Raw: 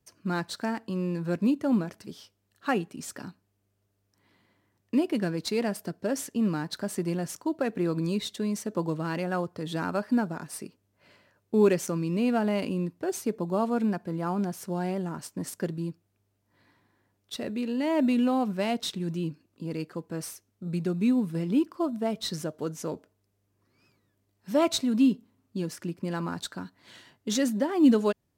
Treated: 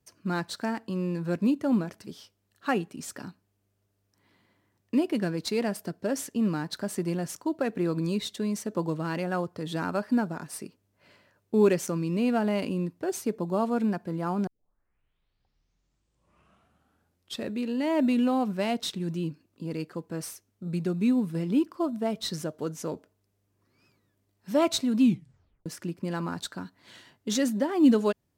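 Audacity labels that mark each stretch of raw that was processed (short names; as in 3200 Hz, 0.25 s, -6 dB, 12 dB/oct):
14.470000	14.470000	tape start 3.07 s
25.010000	25.010000	tape stop 0.65 s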